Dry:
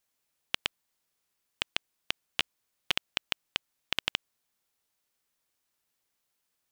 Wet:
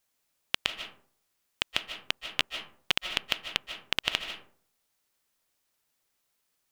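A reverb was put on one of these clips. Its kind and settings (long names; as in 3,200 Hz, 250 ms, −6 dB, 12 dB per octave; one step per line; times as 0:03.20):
comb and all-pass reverb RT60 0.52 s, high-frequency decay 0.45×, pre-delay 110 ms, DRR 7 dB
level +2.5 dB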